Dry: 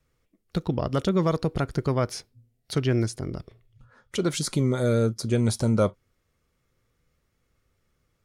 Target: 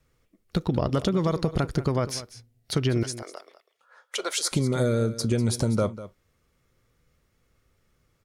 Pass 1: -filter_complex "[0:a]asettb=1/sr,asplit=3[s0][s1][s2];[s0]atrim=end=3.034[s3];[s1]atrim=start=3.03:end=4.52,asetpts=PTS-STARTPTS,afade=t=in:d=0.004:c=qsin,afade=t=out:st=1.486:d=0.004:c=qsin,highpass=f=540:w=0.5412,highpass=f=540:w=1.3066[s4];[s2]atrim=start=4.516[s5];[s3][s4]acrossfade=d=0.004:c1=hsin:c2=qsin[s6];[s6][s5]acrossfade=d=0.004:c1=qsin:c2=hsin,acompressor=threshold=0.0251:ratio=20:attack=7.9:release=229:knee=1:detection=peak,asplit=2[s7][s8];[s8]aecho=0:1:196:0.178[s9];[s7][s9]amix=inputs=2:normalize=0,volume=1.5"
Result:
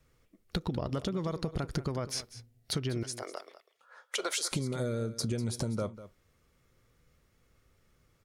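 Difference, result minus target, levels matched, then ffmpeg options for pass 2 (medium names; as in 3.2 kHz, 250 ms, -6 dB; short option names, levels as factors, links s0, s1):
compression: peak gain reduction +9.5 dB
-filter_complex "[0:a]asettb=1/sr,asplit=3[s0][s1][s2];[s0]atrim=end=3.034[s3];[s1]atrim=start=3.03:end=4.52,asetpts=PTS-STARTPTS,afade=t=in:d=0.004:c=qsin,afade=t=out:st=1.486:d=0.004:c=qsin,highpass=f=540:w=0.5412,highpass=f=540:w=1.3066[s4];[s2]atrim=start=4.516[s5];[s3][s4]acrossfade=d=0.004:c1=hsin:c2=qsin[s6];[s6][s5]acrossfade=d=0.004:c1=qsin:c2=hsin,acompressor=threshold=0.0794:ratio=20:attack=7.9:release=229:knee=1:detection=peak,asplit=2[s7][s8];[s8]aecho=0:1:196:0.178[s9];[s7][s9]amix=inputs=2:normalize=0,volume=1.5"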